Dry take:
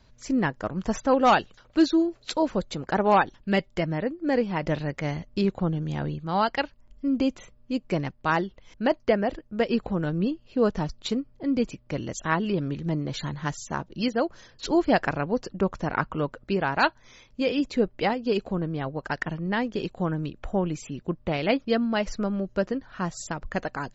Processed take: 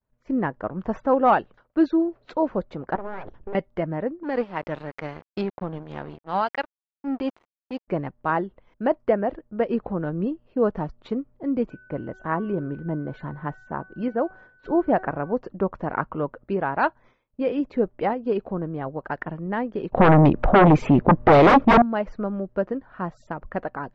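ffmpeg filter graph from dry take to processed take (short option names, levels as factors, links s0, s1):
-filter_complex "[0:a]asettb=1/sr,asplit=3[s0][s1][s2];[s0]atrim=end=2.954[s3];[s1]atrim=start=2.95:end=3.55,asetpts=PTS-STARTPTS,afade=t=in:d=0.004:c=qsin,afade=t=out:st=0.596:d=0.004:c=qsin,lowshelf=f=230:g=11.5,acompressor=threshold=0.0501:ratio=16:attack=3.2:release=140:knee=1:detection=peak,aeval=exprs='abs(val(0))':c=same[s4];[s2]atrim=start=3.546[s5];[s3][s4]acrossfade=d=0.004:c1=hsin:c2=qsin[s6];[s6][s5]acrossfade=d=0.004:c1=qsin:c2=hsin,asettb=1/sr,asplit=3[s7][s8][s9];[s7]atrim=end=4.234[s10];[s8]atrim=start=4.23:end=7.88,asetpts=PTS-STARTPTS,afade=t=in:d=0.004:c=qsin,afade=t=out:st=3.646:d=0.004:c=qsin,equalizer=f=5100:w=0.42:g=13.5,aeval=exprs='sgn(val(0))*max(abs(val(0))-0.0237,0)':c=same,tremolo=f=5.2:d=0.36[s11];[s9]atrim=start=7.876[s12];[s10][s11]acrossfade=d=0.004:c1=hsin:c2=qsin[s13];[s13][s12]acrossfade=d=0.004:c1=qsin:c2=hsin,asettb=1/sr,asplit=3[s14][s15][s16];[s14]atrim=end=11.704[s17];[s15]atrim=start=11.7:end=15.33,asetpts=PTS-STARTPTS,afade=t=in:d=0.004:c=qsin,afade=t=out:st=3.626:d=0.004:c=qsin,aeval=exprs='val(0)+0.00562*sin(2*PI*1500*n/s)':c=same,equalizer=f=5500:w=0.6:g=-10,bandreject=f=377.3:t=h:w=4,bandreject=f=754.6:t=h:w=4,bandreject=f=1131.9:t=h:w=4,bandreject=f=1509.2:t=h:w=4,bandreject=f=1886.5:t=h:w=4,bandreject=f=2263.8:t=h:w=4,bandreject=f=2641.1:t=h:w=4,bandreject=f=3018.4:t=h:w=4,bandreject=f=3395.7:t=h:w=4,bandreject=f=3773:t=h:w=4,bandreject=f=4150.3:t=h:w=4,bandreject=f=4527.6:t=h:w=4,bandreject=f=4904.9:t=h:w=4,bandreject=f=5282.2:t=h:w=4,bandreject=f=5659.5:t=h:w=4,bandreject=f=6036.8:t=h:w=4,bandreject=f=6414.1:t=h:w=4,bandreject=f=6791.4:t=h:w=4,bandreject=f=7168.7:t=h:w=4,bandreject=f=7546:t=h:w=4,bandreject=f=7923.3:t=h:w=4,bandreject=f=8300.6:t=h:w=4,bandreject=f=8677.9:t=h:w=4,bandreject=f=9055.2:t=h:w=4,bandreject=f=9432.5:t=h:w=4,bandreject=f=9809.8:t=h:w=4,bandreject=f=10187.1:t=h:w=4,bandreject=f=10564.4:t=h:w=4,bandreject=f=10941.7:t=h:w=4,bandreject=f=11319:t=h:w=4,bandreject=f=11696.3:t=h:w=4,bandreject=f=12073.6:t=h:w=4,bandreject=f=12450.9:t=h:w=4,bandreject=f=12828.2:t=h:w=4,bandreject=f=13205.5:t=h:w=4,bandreject=f=13582.8:t=h:w=4[s18];[s16]atrim=start=15.326[s19];[s17][s18]acrossfade=d=0.004:c1=hsin:c2=qsin[s20];[s20][s19]acrossfade=d=0.004:c1=qsin:c2=hsin,asettb=1/sr,asplit=3[s21][s22][s23];[s21]atrim=end=19.924[s24];[s22]atrim=start=19.92:end=21.82,asetpts=PTS-STARTPTS,afade=t=in:d=0.004:c=qsin,afade=t=out:st=1.896:d=0.004:c=qsin,aeval=exprs='0.355*sin(PI/2*7.94*val(0)/0.355)':c=same,adynamicsmooth=sensitivity=3:basefreq=3200[s25];[s23]atrim=start=21.816[s26];[s24][s25]acrossfade=d=0.004:c1=hsin:c2=qsin[s27];[s27][s26]acrossfade=d=0.004:c1=qsin:c2=hsin,lowpass=1300,agate=range=0.0224:threshold=0.00562:ratio=3:detection=peak,lowshelf=f=210:g=-7.5,volume=1.41"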